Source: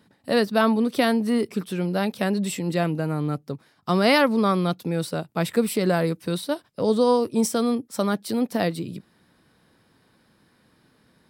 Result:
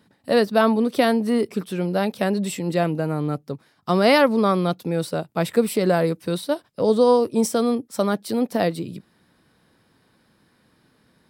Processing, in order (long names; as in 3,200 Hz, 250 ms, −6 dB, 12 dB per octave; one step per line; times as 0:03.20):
dynamic equaliser 560 Hz, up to +4 dB, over −33 dBFS, Q 0.92